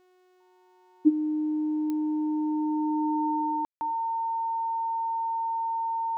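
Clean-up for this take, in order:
click removal
hum removal 366.3 Hz, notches 22
notch filter 910 Hz, Q 30
ambience match 0:03.65–0:03.81

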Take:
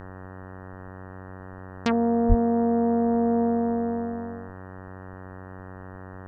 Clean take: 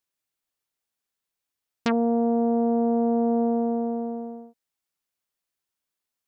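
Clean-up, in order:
hum removal 93.6 Hz, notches 20
0:02.28–0:02.40: high-pass filter 140 Hz 24 dB per octave
downward expander −33 dBFS, range −21 dB

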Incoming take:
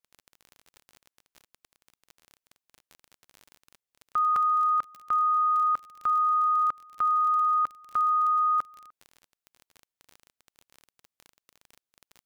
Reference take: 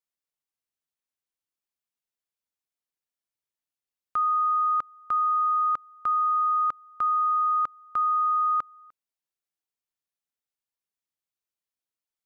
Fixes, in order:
click removal
repair the gap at 0:02.88/0:04.36, 3.1 ms

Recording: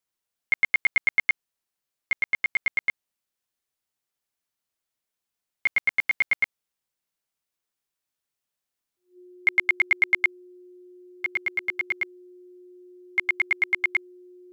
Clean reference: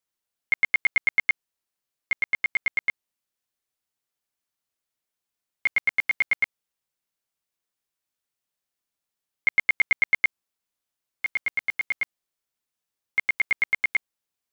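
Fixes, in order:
notch filter 360 Hz, Q 30

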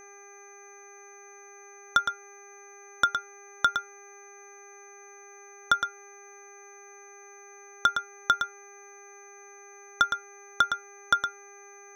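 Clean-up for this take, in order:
clipped peaks rebuilt −9 dBFS
hum removal 401.6 Hz, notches 6
notch filter 6,200 Hz, Q 30
echo removal 113 ms −7.5 dB

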